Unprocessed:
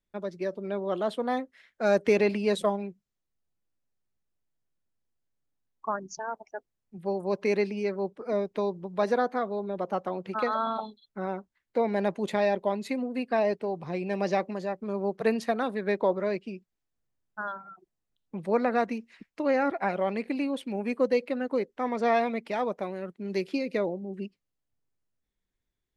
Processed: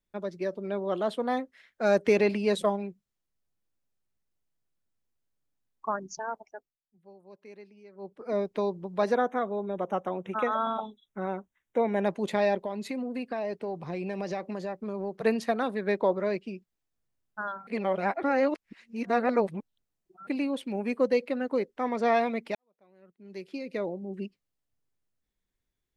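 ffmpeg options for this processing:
-filter_complex "[0:a]asettb=1/sr,asplit=3[s0][s1][s2];[s0]atrim=end=9.154[s3];[s1]atrim=start=9.15:end=12.06,asetpts=PTS-STARTPTS,afade=t=in:d=0.004:c=qsin,afade=t=out:st=2.906:d=0.004:c=qsin,asuperstop=centerf=4600:order=20:qfactor=2.9[s4];[s2]atrim=start=12.056[s5];[s3][s4]acrossfade=d=0.004:c1=hsin:c2=qsin[s6];[s6][s5]acrossfade=d=0.004:c1=qsin:c2=hsin,asettb=1/sr,asplit=3[s7][s8][s9];[s7]atrim=end=12.584[s10];[s8]atrim=start=12.58:end=15.23,asetpts=PTS-STARTPTS,afade=t=in:d=0.004:c=qsin,afade=t=out:st=2.646:d=0.004:c=qsin,acompressor=threshold=0.0355:ratio=4:attack=3.2:release=140:knee=1:detection=peak[s11];[s9]atrim=start=15.226[s12];[s10][s11]acrossfade=d=0.004:c1=hsin:c2=qsin[s13];[s13][s12]acrossfade=d=0.004:c1=qsin:c2=hsin,asplit=6[s14][s15][s16][s17][s18][s19];[s14]atrim=end=6.79,asetpts=PTS-STARTPTS,afade=t=out:st=6.31:d=0.48:silence=0.0749894[s20];[s15]atrim=start=6.79:end=7.92,asetpts=PTS-STARTPTS,volume=0.075[s21];[s16]atrim=start=7.92:end=17.672,asetpts=PTS-STARTPTS,afade=t=in:d=0.48:silence=0.0749894[s22];[s17]atrim=start=17.668:end=20.272,asetpts=PTS-STARTPTS,areverse[s23];[s18]atrim=start=20.268:end=22.55,asetpts=PTS-STARTPTS,afade=t=out:st=2.278:d=0.004:c=hsin[s24];[s19]atrim=start=22.55,asetpts=PTS-STARTPTS,afade=t=in:d=1.57:c=qua[s25];[s20][s21][s22]concat=n=3:v=0:a=1[s26];[s26][s23]acrossfade=d=0.004:c1=hsin:c2=hsin[s27];[s24][s25]concat=n=2:v=0:a=1[s28];[s27][s28]acrossfade=d=0.004:c1=hsin:c2=hsin"

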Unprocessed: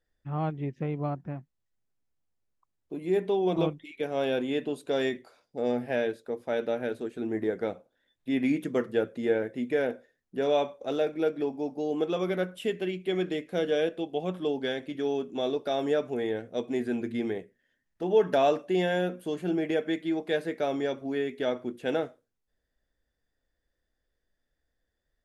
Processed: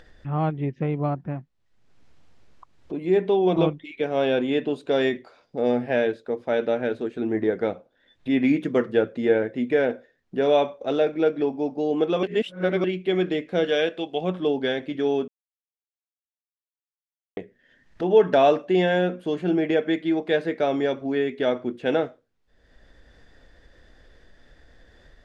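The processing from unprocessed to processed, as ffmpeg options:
-filter_complex "[0:a]asettb=1/sr,asplit=3[s0][s1][s2];[s0]atrim=end=13.644[s3];[s1]atrim=start=13.64:end=14.21,asetpts=PTS-STARTPTS,afade=t=in:d=0.004:c=qsin,afade=t=out:st=0.566:d=0.004:c=qsin,tiltshelf=f=860:g=-5[s4];[s2]atrim=start=14.206[s5];[s3][s4]acrossfade=d=0.004:c1=hsin:c2=qsin[s6];[s6][s5]acrossfade=d=0.004:c1=qsin:c2=hsin,asplit=5[s7][s8][s9][s10][s11];[s7]atrim=end=12.232[s12];[s8]atrim=start=12.228:end=12.842,asetpts=PTS-STARTPTS,areverse[s13];[s9]atrim=start=12.838:end=15.28,asetpts=PTS-STARTPTS,afade=t=out:st=2.438:d=0.004:c=hsin[s14];[s10]atrim=start=15.28:end=17.37,asetpts=PTS-STARTPTS,volume=0[s15];[s11]atrim=start=17.37,asetpts=PTS-STARTPTS,afade=t=in:d=0.004:c=hsin[s16];[s12][s13]acrossfade=d=0.004:c1=hsin:c2=hsin[s17];[s14][s15][s16]concat=n=3:v=0:a=1[s18];[s17][s18]acrossfade=d=0.004:c1=hsin:c2=hsin,lowpass=4500,acompressor=mode=upward:threshold=0.0112:ratio=2.5,volume=2"

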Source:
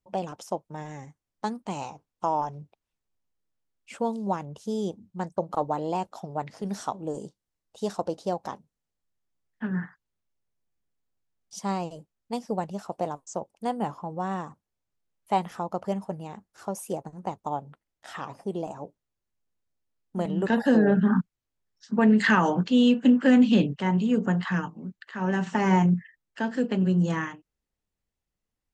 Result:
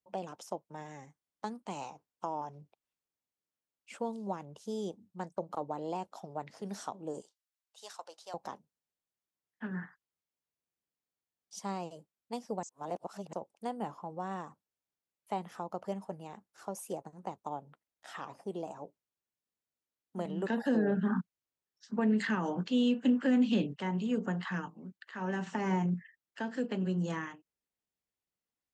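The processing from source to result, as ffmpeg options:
-filter_complex "[0:a]asettb=1/sr,asplit=3[s0][s1][s2];[s0]atrim=end=7.214[s3];[s1]atrim=start=7.21:end=8.34,asetpts=PTS-STARTPTS,afade=t=in:d=0.004:c=qsin,afade=t=out:st=1.126:d=0.004:c=qsin,highpass=1200[s4];[s2]atrim=start=8.336[s5];[s3][s4]acrossfade=d=0.004:c1=hsin:c2=qsin[s6];[s6][s5]acrossfade=d=0.004:c1=qsin:c2=hsin,asplit=3[s7][s8][s9];[s7]atrim=end=12.632[s10];[s8]atrim=start=12.628:end=13.332,asetpts=PTS-STARTPTS,areverse[s11];[s9]atrim=start=13.328[s12];[s10][s11]acrossfade=d=0.004:c1=hsin:c2=hsin[s13];[s13][s12]acrossfade=d=0.004:c1=hsin:c2=hsin,highpass=f=240:p=1,acrossover=split=440[s14][s15];[s15]acompressor=threshold=0.0282:ratio=3[s16];[s14][s16]amix=inputs=2:normalize=0,volume=0.531"

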